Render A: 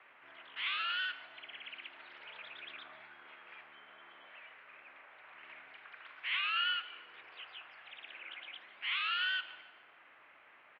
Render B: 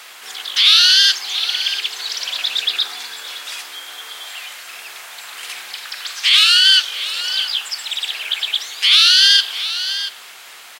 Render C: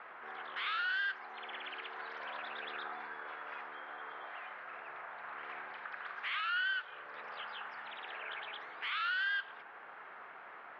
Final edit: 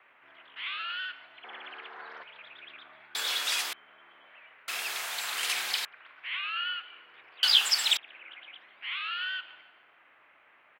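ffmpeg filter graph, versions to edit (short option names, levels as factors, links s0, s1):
-filter_complex "[1:a]asplit=3[s0][s1][s2];[0:a]asplit=5[s3][s4][s5][s6][s7];[s3]atrim=end=1.442[s8];[2:a]atrim=start=1.438:end=2.232[s9];[s4]atrim=start=2.228:end=3.152[s10];[s0]atrim=start=3.148:end=3.732[s11];[s5]atrim=start=3.728:end=4.682[s12];[s1]atrim=start=4.678:end=5.852[s13];[s6]atrim=start=5.848:end=7.432[s14];[s2]atrim=start=7.428:end=7.972[s15];[s7]atrim=start=7.968[s16];[s8][s9]acrossfade=d=0.004:c1=hsin:c2=hsin[s17];[s17][s10]acrossfade=d=0.004:c1=hsin:c2=hsin[s18];[s18][s11]acrossfade=d=0.004:c1=hsin:c2=hsin[s19];[s19][s12]acrossfade=d=0.004:c1=hsin:c2=hsin[s20];[s20][s13]acrossfade=d=0.004:c1=hsin:c2=hsin[s21];[s21][s14]acrossfade=d=0.004:c1=hsin:c2=hsin[s22];[s22][s15]acrossfade=d=0.004:c1=hsin:c2=hsin[s23];[s23][s16]acrossfade=d=0.004:c1=hsin:c2=hsin"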